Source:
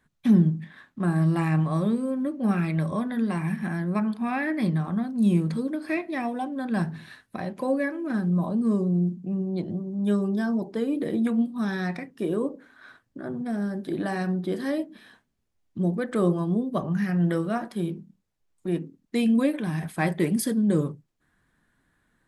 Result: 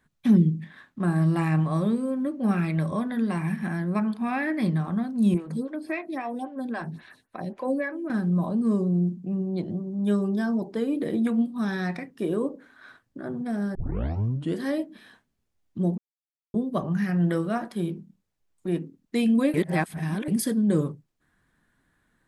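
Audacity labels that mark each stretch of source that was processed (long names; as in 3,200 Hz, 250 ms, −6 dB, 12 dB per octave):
0.370000	0.610000	gain on a spectral selection 560–1,900 Hz −22 dB
5.340000	8.100000	phaser with staggered stages 3.7 Hz
13.750000	13.750000	tape start 0.83 s
15.980000	16.540000	silence
19.540000	20.280000	reverse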